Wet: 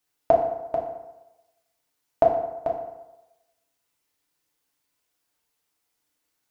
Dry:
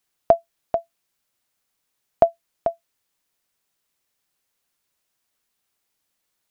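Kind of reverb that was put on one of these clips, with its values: FDN reverb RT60 1 s, low-frequency decay 0.85×, high-frequency decay 0.65×, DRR -2.5 dB; gain -4.5 dB

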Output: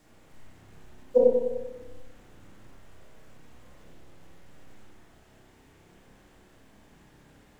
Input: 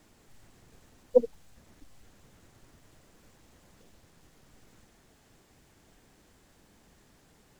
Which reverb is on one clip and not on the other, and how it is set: spring tank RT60 1.2 s, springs 30/49 ms, chirp 70 ms, DRR -5.5 dB; gain -1.5 dB

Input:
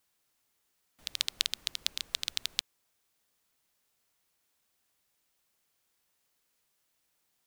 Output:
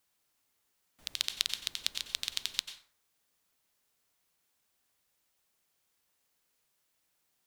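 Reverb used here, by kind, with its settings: plate-style reverb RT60 0.51 s, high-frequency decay 0.6×, pre-delay 80 ms, DRR 8.5 dB; gain -1 dB

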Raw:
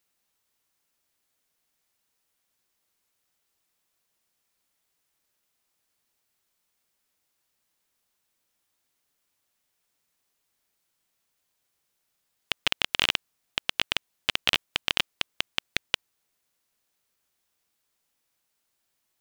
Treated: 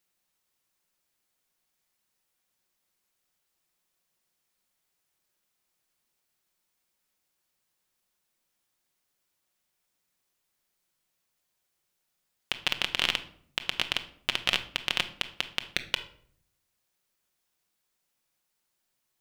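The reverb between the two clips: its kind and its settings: shoebox room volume 1000 m³, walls furnished, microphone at 0.97 m; gain -2.5 dB

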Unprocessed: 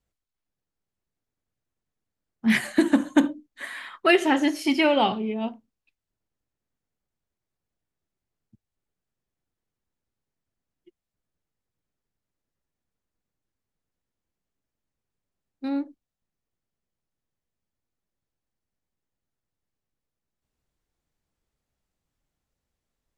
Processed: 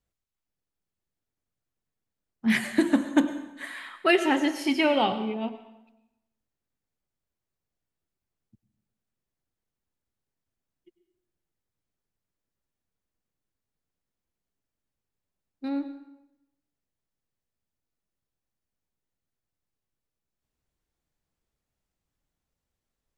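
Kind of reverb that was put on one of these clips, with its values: plate-style reverb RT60 0.91 s, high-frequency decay 0.85×, pre-delay 85 ms, DRR 11.5 dB; gain -2.5 dB

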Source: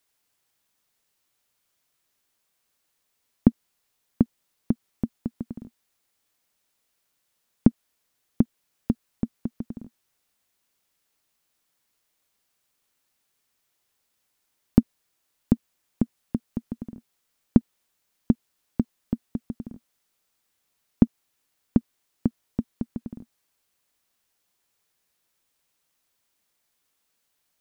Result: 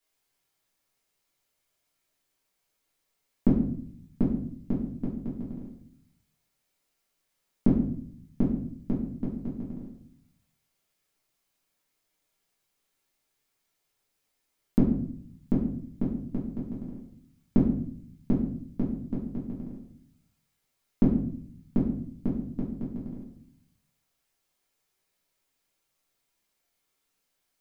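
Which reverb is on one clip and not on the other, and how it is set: shoebox room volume 100 m³, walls mixed, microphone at 1.7 m; gain -9.5 dB

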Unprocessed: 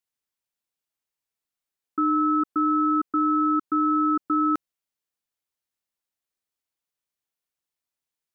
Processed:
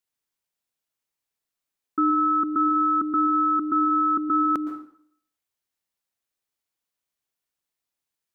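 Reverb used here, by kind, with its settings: plate-style reverb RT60 0.61 s, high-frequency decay 0.85×, pre-delay 0.105 s, DRR 8 dB; gain +1.5 dB

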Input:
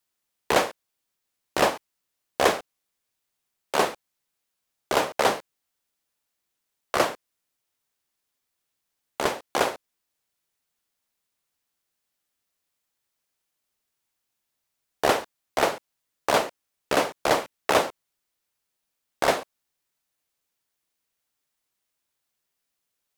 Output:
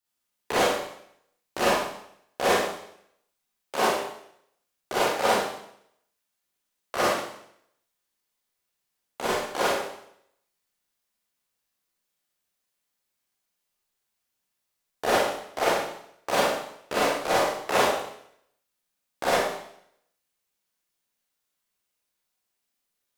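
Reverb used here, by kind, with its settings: Schroeder reverb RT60 0.71 s, combs from 31 ms, DRR -8 dB; gain -8.5 dB

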